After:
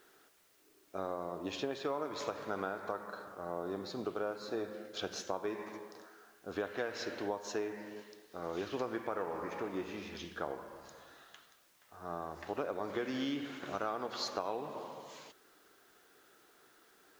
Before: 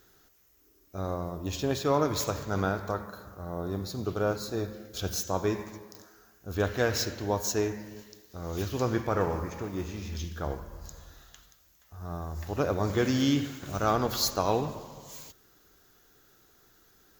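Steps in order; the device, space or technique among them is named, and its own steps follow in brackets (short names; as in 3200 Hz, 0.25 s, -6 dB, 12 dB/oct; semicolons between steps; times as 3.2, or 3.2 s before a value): baby monitor (BPF 320–3200 Hz; compressor, threshold -35 dBFS, peak gain reduction 13.5 dB; white noise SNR 29 dB); gain +1.5 dB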